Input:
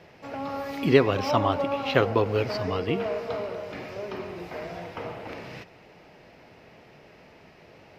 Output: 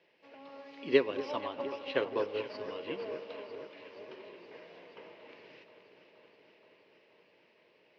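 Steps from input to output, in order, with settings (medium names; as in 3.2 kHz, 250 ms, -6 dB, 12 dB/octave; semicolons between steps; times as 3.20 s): dynamic bell 2.9 kHz, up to -4 dB, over -40 dBFS, Q 0.91; flange 0.31 Hz, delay 5.6 ms, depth 2.9 ms, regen -86%; cabinet simulation 360–4900 Hz, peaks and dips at 740 Hz -10 dB, 1.3 kHz -9 dB, 2.9 kHz +4 dB; on a send: echo whose repeats swap between lows and highs 237 ms, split 1.6 kHz, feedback 86%, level -9 dB; on the sum: upward expansion 1.5:1, over -42 dBFS; trim +1.5 dB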